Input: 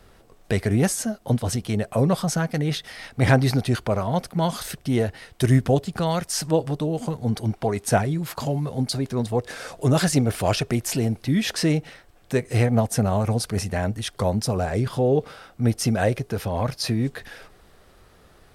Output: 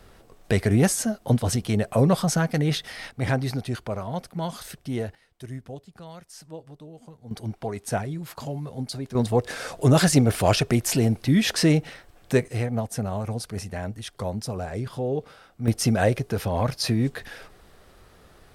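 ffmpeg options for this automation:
-af "asetnsamples=n=441:p=0,asendcmd='3.11 volume volume -7dB;5.15 volume volume -19dB;7.31 volume volume -7dB;9.15 volume volume 2dB;12.48 volume volume -7dB;15.68 volume volume 0.5dB',volume=1.12"

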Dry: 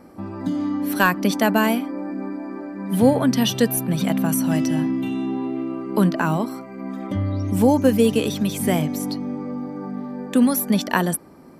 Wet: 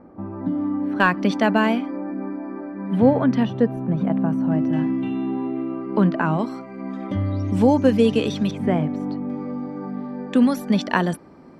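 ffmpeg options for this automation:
-af "asetnsamples=n=441:p=0,asendcmd='1 lowpass f 3500;1.97 lowpass f 2100;3.45 lowpass f 1100;4.73 lowpass f 2500;6.39 lowpass f 4800;8.51 lowpass f 1700;9.3 lowpass f 4400',lowpass=1300"

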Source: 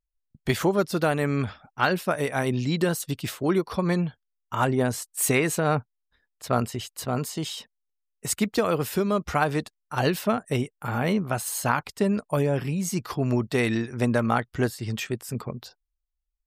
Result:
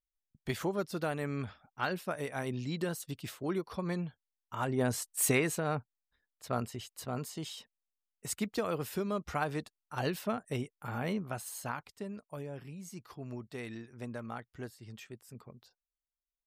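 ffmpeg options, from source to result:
-af "volume=0.708,afade=t=in:st=4.65:d=0.39:silence=0.398107,afade=t=out:st=5.04:d=0.61:silence=0.446684,afade=t=out:st=11.08:d=1:silence=0.375837"

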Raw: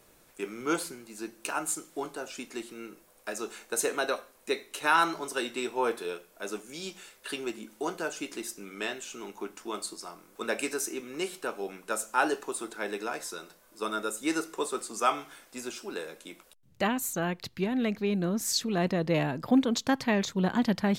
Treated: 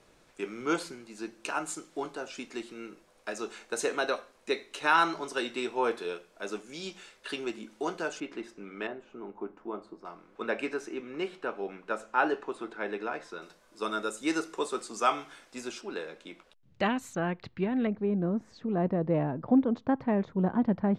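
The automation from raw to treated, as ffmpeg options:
-af "asetnsamples=n=441:p=0,asendcmd='8.2 lowpass f 2300;8.87 lowpass f 1000;10.05 lowpass f 2600;13.42 lowpass f 6700;15.81 lowpass f 4000;17.15 lowpass f 2200;17.87 lowpass f 1000',lowpass=6000"

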